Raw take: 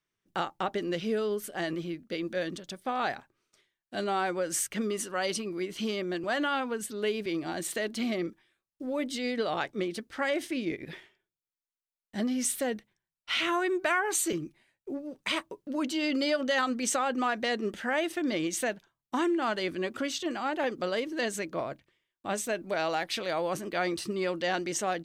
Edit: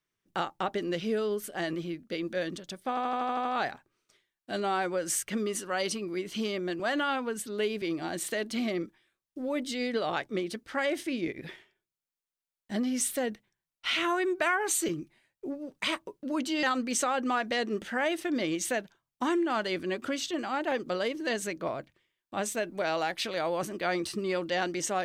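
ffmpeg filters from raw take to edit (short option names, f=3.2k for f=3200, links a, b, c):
-filter_complex "[0:a]asplit=9[a][b][c][d][e][f][g][h][i];[a]atrim=end=2.972[j];[b]atrim=start=2.888:end=2.972[k];[c]atrim=start=2.888:end=2.972[l];[d]atrim=start=2.888:end=2.972[m];[e]atrim=start=2.888:end=2.972[n];[f]atrim=start=2.888:end=2.972[o];[g]atrim=start=2.888:end=2.972[p];[h]atrim=start=2.888:end=16.072[q];[i]atrim=start=16.548[r];[j][k]acrossfade=d=0.004:c1=hsin:c2=hsin[s];[s][l]acrossfade=d=0.004:c1=hsin:c2=hsin[t];[t][m]acrossfade=d=0.004:c1=hsin:c2=hsin[u];[u][n]acrossfade=d=0.004:c1=hsin:c2=hsin[v];[v][o]acrossfade=d=0.004:c1=hsin:c2=hsin[w];[w][p]acrossfade=d=0.004:c1=hsin:c2=hsin[x];[x][q]acrossfade=d=0.004:c1=hsin:c2=hsin[y];[y][r]acrossfade=d=0.004:c1=hsin:c2=hsin"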